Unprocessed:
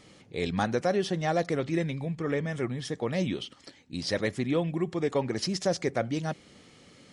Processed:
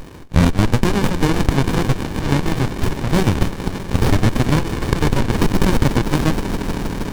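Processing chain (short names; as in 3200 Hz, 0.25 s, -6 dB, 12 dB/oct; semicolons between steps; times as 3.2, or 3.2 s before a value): steep high-pass 760 Hz 36 dB/oct; tilt shelf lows -6 dB, about 1100 Hz; swelling echo 0.157 s, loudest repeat 5, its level -16.5 dB; maximiser +23 dB; running maximum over 65 samples; gain +1 dB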